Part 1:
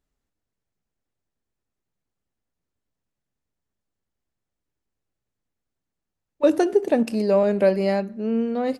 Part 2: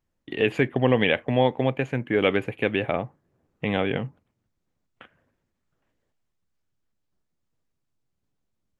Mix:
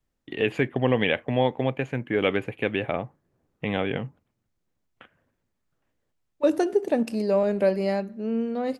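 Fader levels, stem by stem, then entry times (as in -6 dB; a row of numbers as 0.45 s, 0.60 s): -3.5 dB, -2.0 dB; 0.00 s, 0.00 s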